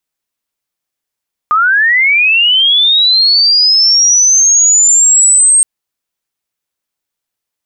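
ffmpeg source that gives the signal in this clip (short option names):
-f lavfi -i "aevalsrc='pow(10,(-6.5+2.5*t/4.12)/20)*sin(2*PI*(1200*t+7300*t*t/(2*4.12)))':d=4.12:s=44100"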